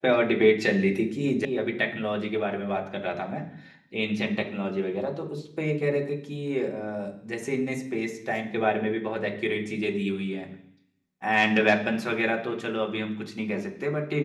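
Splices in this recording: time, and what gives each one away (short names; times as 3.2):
1.45 sound cut off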